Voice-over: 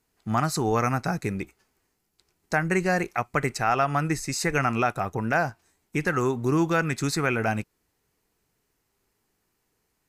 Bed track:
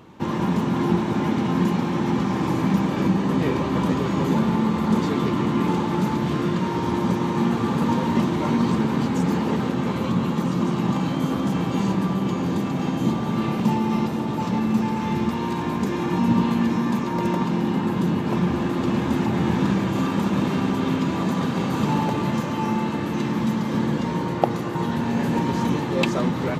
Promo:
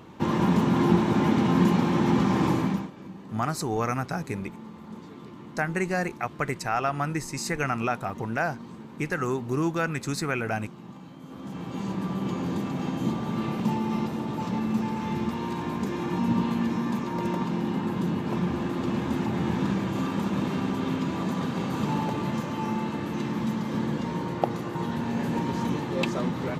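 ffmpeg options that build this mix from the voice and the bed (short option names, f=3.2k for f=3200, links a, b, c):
-filter_complex "[0:a]adelay=3050,volume=-3.5dB[a];[1:a]volume=16dB,afade=t=out:st=2.46:d=0.45:silence=0.0841395,afade=t=in:st=11.24:d=1.06:silence=0.158489[b];[a][b]amix=inputs=2:normalize=0"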